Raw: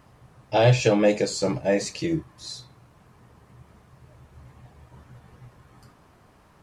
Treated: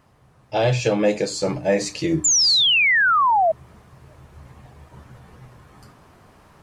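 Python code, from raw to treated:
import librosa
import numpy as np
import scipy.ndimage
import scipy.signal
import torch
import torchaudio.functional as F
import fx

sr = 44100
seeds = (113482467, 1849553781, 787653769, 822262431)

y = fx.rider(x, sr, range_db=4, speed_s=2.0)
y = fx.hum_notches(y, sr, base_hz=60, count=5)
y = fx.spec_paint(y, sr, seeds[0], shape='fall', start_s=2.24, length_s=1.28, low_hz=620.0, high_hz=7400.0, level_db=-18.0)
y = y * librosa.db_to_amplitude(1.5)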